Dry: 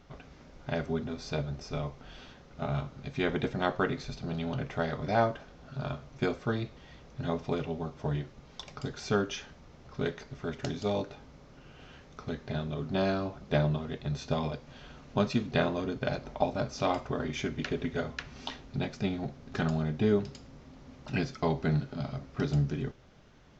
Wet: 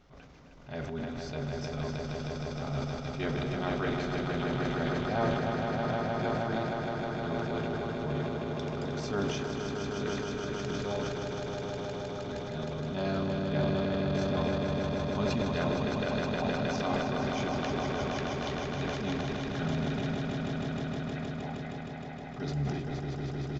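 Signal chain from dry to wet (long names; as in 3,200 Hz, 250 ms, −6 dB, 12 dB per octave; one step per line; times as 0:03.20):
0:20.02–0:22.22: pair of resonant band-passes 1,200 Hz, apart 1.3 octaves
echo that builds up and dies away 156 ms, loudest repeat 5, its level −6.5 dB
transient designer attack −7 dB, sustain +8 dB
single-tap delay 260 ms −11.5 dB
level −4 dB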